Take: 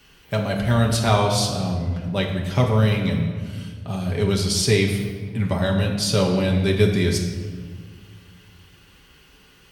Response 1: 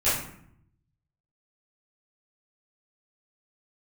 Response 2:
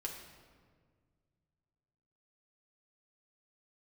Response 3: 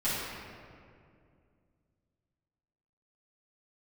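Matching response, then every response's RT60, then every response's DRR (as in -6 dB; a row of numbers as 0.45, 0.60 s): 2; 0.65, 1.8, 2.3 s; -14.5, -1.0, -13.5 dB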